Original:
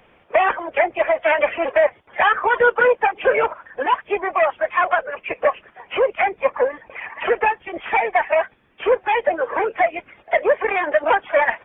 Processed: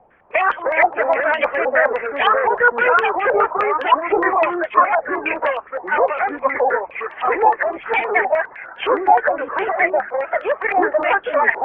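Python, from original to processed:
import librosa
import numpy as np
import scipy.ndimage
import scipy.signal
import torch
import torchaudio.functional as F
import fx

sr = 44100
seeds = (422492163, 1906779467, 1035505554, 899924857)

y = fx.echo_pitch(x, sr, ms=242, semitones=-3, count=2, db_per_echo=-3.0)
y = fx.filter_held_lowpass(y, sr, hz=9.7, low_hz=790.0, high_hz=3000.0)
y = y * librosa.db_to_amplitude(-4.5)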